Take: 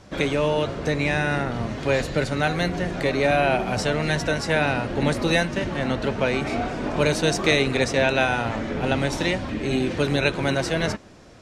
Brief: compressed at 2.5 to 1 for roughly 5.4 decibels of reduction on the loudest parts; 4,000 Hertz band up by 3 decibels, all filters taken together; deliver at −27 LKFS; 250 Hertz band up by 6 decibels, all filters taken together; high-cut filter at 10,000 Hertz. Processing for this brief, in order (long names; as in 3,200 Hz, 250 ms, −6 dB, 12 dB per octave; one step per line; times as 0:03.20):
low-pass filter 10,000 Hz
parametric band 250 Hz +7.5 dB
parametric band 4,000 Hz +3.5 dB
downward compressor 2.5 to 1, threshold −21 dBFS
level −3 dB